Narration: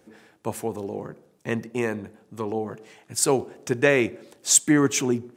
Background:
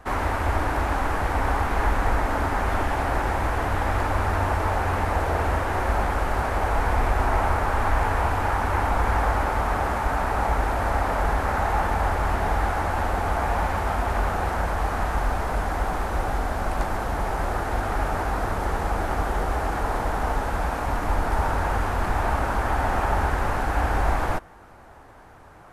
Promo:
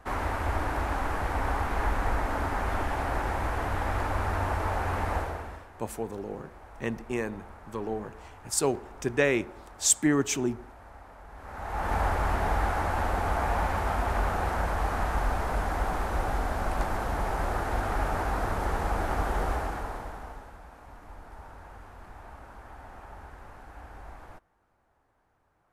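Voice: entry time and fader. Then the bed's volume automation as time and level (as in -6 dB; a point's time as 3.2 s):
5.35 s, -5.0 dB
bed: 5.17 s -5.5 dB
5.71 s -25.5 dB
11.28 s -25.5 dB
11.94 s -3.5 dB
19.5 s -3.5 dB
20.61 s -23 dB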